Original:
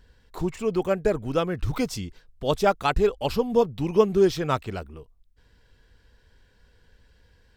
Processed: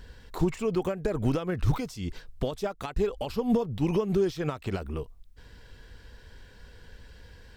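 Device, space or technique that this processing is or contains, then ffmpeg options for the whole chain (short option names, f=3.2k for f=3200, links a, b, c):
de-esser from a sidechain: -filter_complex "[0:a]asplit=2[a][b];[b]highpass=f=6.2k:p=1,apad=whole_len=333714[c];[a][c]sidechaincompress=threshold=-52dB:ratio=10:attack=1.2:release=97,volume=9dB"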